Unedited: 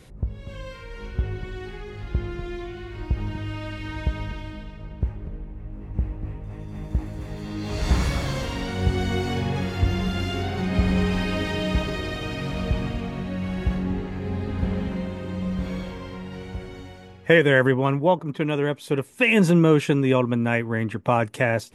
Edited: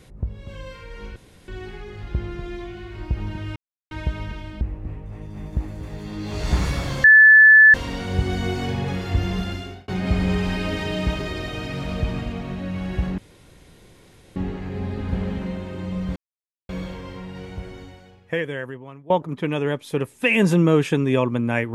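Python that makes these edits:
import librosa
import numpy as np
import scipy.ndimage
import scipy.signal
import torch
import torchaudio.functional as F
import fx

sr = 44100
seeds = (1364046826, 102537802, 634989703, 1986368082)

y = fx.edit(x, sr, fx.room_tone_fill(start_s=1.16, length_s=0.32),
    fx.silence(start_s=3.56, length_s=0.35),
    fx.cut(start_s=4.61, length_s=1.38),
    fx.insert_tone(at_s=8.42, length_s=0.7, hz=1740.0, db=-6.5),
    fx.fade_out_span(start_s=10.07, length_s=0.49),
    fx.insert_room_tone(at_s=13.86, length_s=1.18),
    fx.insert_silence(at_s=15.66, length_s=0.53),
    fx.fade_out_to(start_s=16.72, length_s=1.35, curve='qua', floor_db=-20.5), tone=tone)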